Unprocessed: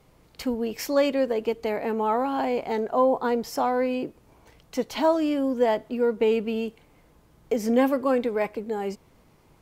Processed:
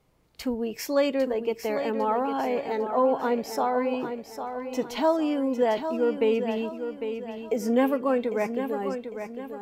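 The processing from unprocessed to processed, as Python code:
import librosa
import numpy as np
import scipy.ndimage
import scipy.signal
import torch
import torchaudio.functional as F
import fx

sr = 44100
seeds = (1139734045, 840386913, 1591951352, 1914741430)

y = fx.noise_reduce_blind(x, sr, reduce_db=7)
y = fx.echo_feedback(y, sr, ms=802, feedback_pct=41, wet_db=-8.5)
y = F.gain(torch.from_numpy(y), -1.5).numpy()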